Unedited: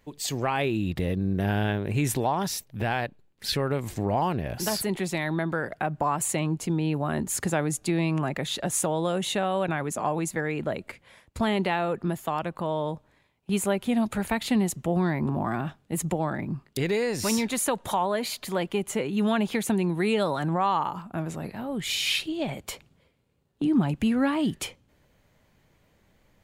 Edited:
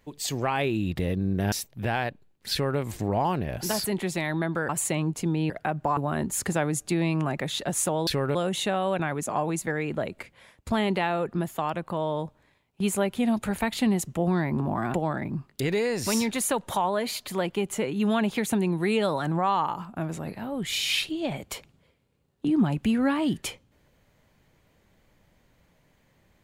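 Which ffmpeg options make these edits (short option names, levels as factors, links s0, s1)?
-filter_complex "[0:a]asplit=8[s0][s1][s2][s3][s4][s5][s6][s7];[s0]atrim=end=1.522[s8];[s1]atrim=start=2.488:end=5.662[s9];[s2]atrim=start=6.128:end=6.942[s10];[s3]atrim=start=5.658:end=6.132[s11];[s4]atrim=start=6.938:end=9.042[s12];[s5]atrim=start=3.488:end=3.772[s13];[s6]atrim=start=9.038:end=15.632[s14];[s7]atrim=start=16.108[s15];[s8][s9]acrossfade=d=0.004:c1=hsin:c2=hsin[s16];[s16][s10]acrossfade=d=0.004:c1=hsin:c2=hsin[s17];[s17][s11]acrossfade=d=0.004:c1=hsin:c2=hsin[s18];[s18][s12]acrossfade=d=0.004:c1=hsin:c2=hsin[s19];[s19][s13]acrossfade=d=0.004:c1=hsin:c2=hsin[s20];[s20][s14]acrossfade=d=0.004:c1=hsin:c2=hsin[s21];[s21][s15]acrossfade=d=0.004:c1=hsin:c2=hsin"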